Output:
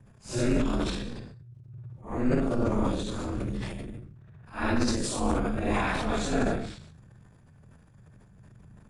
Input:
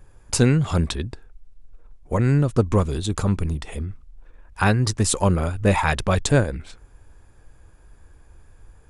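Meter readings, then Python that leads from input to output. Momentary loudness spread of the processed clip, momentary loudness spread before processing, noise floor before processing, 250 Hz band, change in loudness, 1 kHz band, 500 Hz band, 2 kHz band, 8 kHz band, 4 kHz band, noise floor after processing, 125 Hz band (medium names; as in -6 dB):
17 LU, 11 LU, -51 dBFS, -4.5 dB, -7.5 dB, -6.0 dB, -6.0 dB, -7.0 dB, -10.5 dB, -6.5 dB, -56 dBFS, -13.0 dB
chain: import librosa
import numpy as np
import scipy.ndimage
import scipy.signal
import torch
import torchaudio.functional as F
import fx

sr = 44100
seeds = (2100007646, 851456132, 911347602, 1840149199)

y = fx.phase_scramble(x, sr, seeds[0], window_ms=200)
y = fx.rev_gated(y, sr, seeds[1], gate_ms=200, shape='flat', drr_db=8.5)
y = y * np.sin(2.0 * np.pi * 120.0 * np.arange(len(y)) / sr)
y = fx.transient(y, sr, attack_db=-3, sustain_db=9)
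y = fx.high_shelf(y, sr, hz=10000.0, db=-11.5)
y = F.gain(torch.from_numpy(y), -5.5).numpy()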